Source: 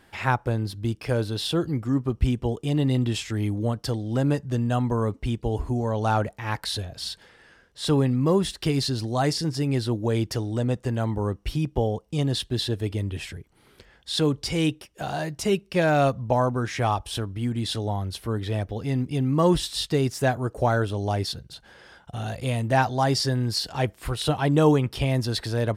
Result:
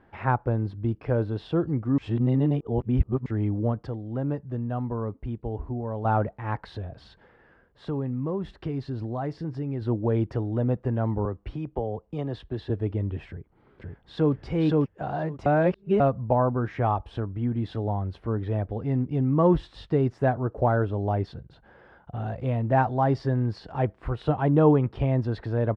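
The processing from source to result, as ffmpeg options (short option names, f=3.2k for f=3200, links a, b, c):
-filter_complex "[0:a]asettb=1/sr,asplit=3[a][b][c];[a]atrim=end=6.764[d];[b]atrim=start=6.76:end=9.82,asetpts=PTS-STARTPTS,afade=t=in:d=0.004:c=qsin,afade=t=out:st=3.056:d=0.004:c=qsin,acompressor=threshold=-29dB:ratio=2.5:attack=3.2:release=140:knee=1:detection=peak[e];[c]atrim=start=9.816[f];[d][e]acrossfade=d=0.004:c1=hsin:c2=qsin[g];[g][f]acrossfade=d=0.004:c1=qsin:c2=hsin,asettb=1/sr,asplit=3[h][i][j];[h]atrim=end=11.254[k];[i]atrim=start=11.25:end=12.7,asetpts=PTS-STARTPTS,afade=t=in:d=0.004:c=qsin,afade=t=out:st=1.446:d=0.004:c=qsin,acrossover=split=89|330[l][m][n];[l]acompressor=threshold=-36dB:ratio=4[o];[m]acompressor=threshold=-37dB:ratio=4[p];[n]acompressor=threshold=-27dB:ratio=4[q];[o][p][q]amix=inputs=3:normalize=0[r];[j]atrim=start=12.696[s];[k][r]acrossfade=d=0.004:c1=hsin:c2=qsin[t];[t][s]acrossfade=d=0.004:c1=qsin:c2=hsin,asplit=2[u][v];[v]afade=t=in:st=13.29:d=0.01,afade=t=out:st=14.33:d=0.01,aecho=0:1:520|1040|1560:0.944061|0.141609|0.0212414[w];[u][w]amix=inputs=2:normalize=0,asplit=7[x][y][z][aa][ab][ac][ad];[x]atrim=end=1.982[ae];[y]atrim=start=1.978:end=3.262,asetpts=PTS-STARTPTS,areverse[af];[z]atrim=start=3.258:end=3.872[ag];[aa]atrim=start=3.868:end=6.052,asetpts=PTS-STARTPTS,volume=-5.5dB[ah];[ab]atrim=start=6.048:end=15.462[ai];[ac]atrim=start=15.458:end=16.002,asetpts=PTS-STARTPTS,areverse[aj];[ad]atrim=start=15.998[ak];[ae][af]acrossfade=d=0.004:c1=hsin:c2=hsin[al];[al][ag]acrossfade=d=0.004:c1=hsin:c2=hsin[am];[am][ah]acrossfade=d=0.004:c1=hsin:c2=hsin[an];[an][ai]acrossfade=d=0.004:c1=hsin:c2=hsin[ao];[ao][aj]acrossfade=d=0.004:c1=hsin:c2=hsin[ap];[ap][ak]acrossfade=d=0.004:c1=hsin:c2=hsin,lowpass=1.3k"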